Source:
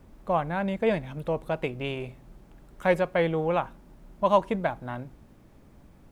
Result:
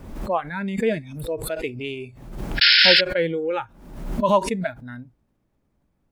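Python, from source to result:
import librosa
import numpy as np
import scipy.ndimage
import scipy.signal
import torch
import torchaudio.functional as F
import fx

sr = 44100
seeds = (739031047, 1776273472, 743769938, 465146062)

y = fx.spec_paint(x, sr, seeds[0], shape='noise', start_s=2.61, length_s=0.4, low_hz=1400.0, high_hz=5400.0, level_db=-17.0)
y = fx.noise_reduce_blind(y, sr, reduce_db=19)
y = fx.pre_swell(y, sr, db_per_s=66.0)
y = y * 10.0 ** (2.5 / 20.0)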